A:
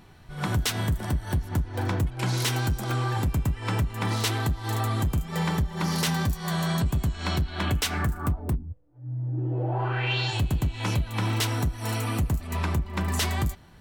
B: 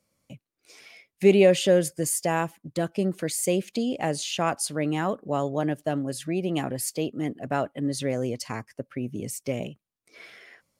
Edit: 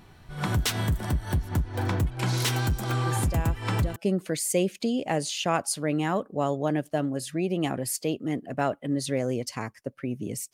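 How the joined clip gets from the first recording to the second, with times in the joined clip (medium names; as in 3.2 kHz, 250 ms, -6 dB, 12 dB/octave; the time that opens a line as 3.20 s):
A
3.06 s: add B from 1.99 s 0.90 s -9.5 dB
3.96 s: go over to B from 2.89 s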